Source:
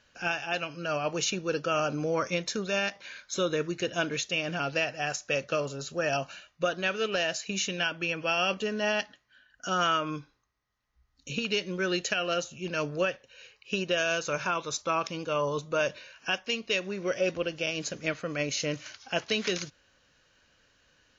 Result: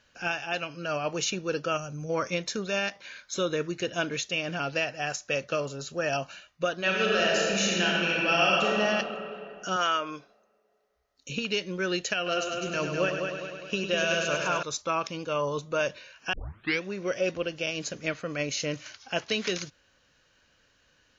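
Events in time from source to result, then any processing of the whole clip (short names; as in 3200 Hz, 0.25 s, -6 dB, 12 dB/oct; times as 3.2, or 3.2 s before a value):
1.77–2.1 spectral gain 200–5600 Hz -12 dB
6.77–8.8 reverb throw, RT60 2.7 s, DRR -4 dB
9.76–11.29 tone controls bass -14 dB, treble +1 dB
12.16–14.63 multi-head echo 0.102 s, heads first and second, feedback 61%, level -7.5 dB
16.33 tape start 0.50 s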